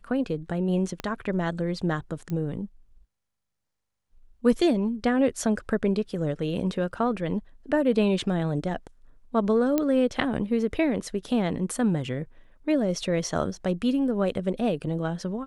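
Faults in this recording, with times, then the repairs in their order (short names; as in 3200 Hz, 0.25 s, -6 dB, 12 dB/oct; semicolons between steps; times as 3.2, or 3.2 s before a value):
1 pop -17 dBFS
2.3 pop -22 dBFS
9.78 pop -11 dBFS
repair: de-click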